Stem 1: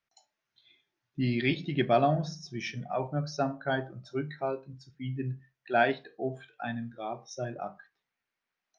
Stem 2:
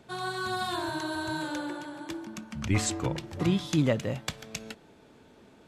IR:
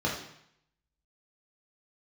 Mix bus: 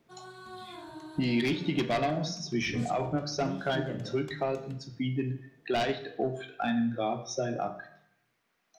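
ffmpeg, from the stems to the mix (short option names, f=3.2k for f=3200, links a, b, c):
-filter_complex "[0:a]aeval=exprs='0.299*sin(PI/2*2.51*val(0)/0.299)':c=same,acrossover=split=170|2300[a][b][c];[a]acompressor=threshold=-43dB:ratio=4[d];[b]acompressor=threshold=-31dB:ratio=4[e];[c]acompressor=threshold=-33dB:ratio=4[f];[d][e][f]amix=inputs=3:normalize=0,asoftclip=type=hard:threshold=-21dB,volume=-1.5dB,asplit=3[g][h][i];[h]volume=-16dB[j];[1:a]volume=-16dB,asplit=2[k][l];[l]volume=-14dB[m];[i]apad=whole_len=250089[n];[k][n]sidechaincompress=threshold=-31dB:ratio=8:attack=16:release=345[o];[2:a]atrim=start_sample=2205[p];[j][m]amix=inputs=2:normalize=0[q];[q][p]afir=irnorm=-1:irlink=0[r];[g][o][r]amix=inputs=3:normalize=0,lowshelf=f=170:g=3"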